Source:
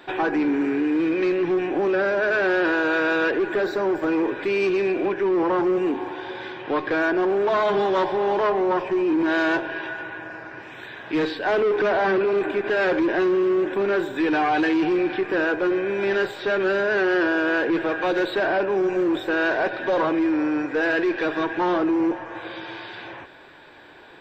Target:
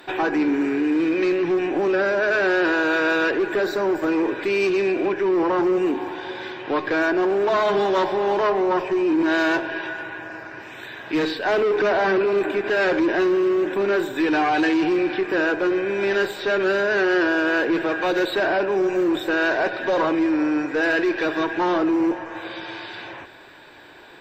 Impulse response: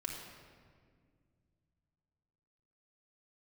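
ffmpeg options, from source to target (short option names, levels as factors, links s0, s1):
-filter_complex "[0:a]aemphasis=mode=production:type=cd,bandreject=f=3300:w=24,asplit=2[s0][s1];[1:a]atrim=start_sample=2205[s2];[s1][s2]afir=irnorm=-1:irlink=0,volume=0.178[s3];[s0][s3]amix=inputs=2:normalize=0"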